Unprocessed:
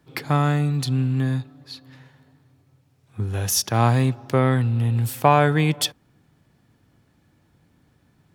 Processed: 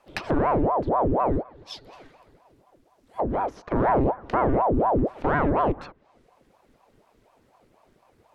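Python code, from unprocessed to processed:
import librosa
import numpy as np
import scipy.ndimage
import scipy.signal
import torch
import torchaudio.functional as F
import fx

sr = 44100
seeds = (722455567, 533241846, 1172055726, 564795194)

y = np.clip(10.0 ** (17.0 / 20.0) * x, -1.0, 1.0) / 10.0 ** (17.0 / 20.0)
y = fx.env_lowpass_down(y, sr, base_hz=920.0, full_db=-22.0)
y = fx.ring_lfo(y, sr, carrier_hz=510.0, swing_pct=75, hz=4.1)
y = y * 10.0 ** (2.5 / 20.0)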